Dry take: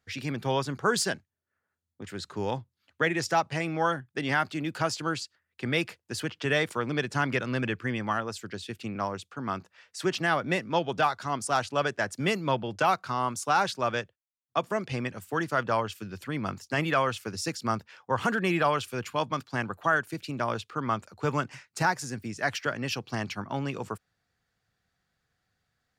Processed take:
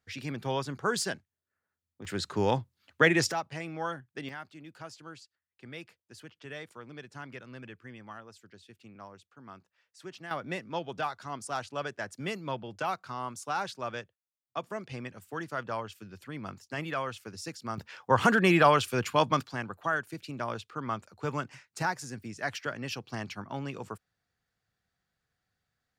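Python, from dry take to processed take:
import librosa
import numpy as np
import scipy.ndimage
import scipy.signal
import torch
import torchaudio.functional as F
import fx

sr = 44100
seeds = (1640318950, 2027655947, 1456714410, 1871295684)

y = fx.gain(x, sr, db=fx.steps((0.0, -4.0), (2.05, 4.0), (3.32, -8.0), (4.29, -16.5), (10.31, -8.0), (17.78, 4.0), (19.53, -5.0)))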